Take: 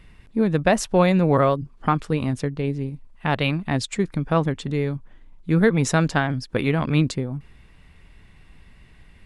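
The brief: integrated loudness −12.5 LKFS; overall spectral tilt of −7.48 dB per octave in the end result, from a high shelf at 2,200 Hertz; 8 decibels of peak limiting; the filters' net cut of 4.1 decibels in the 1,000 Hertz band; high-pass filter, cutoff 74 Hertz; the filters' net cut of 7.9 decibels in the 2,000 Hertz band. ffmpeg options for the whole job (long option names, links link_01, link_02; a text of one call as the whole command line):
ffmpeg -i in.wav -af "highpass=74,equalizer=frequency=1000:width_type=o:gain=-3,equalizer=frequency=2000:width_type=o:gain=-7.5,highshelf=frequency=2200:gain=-3.5,volume=14dB,alimiter=limit=-2dB:level=0:latency=1" out.wav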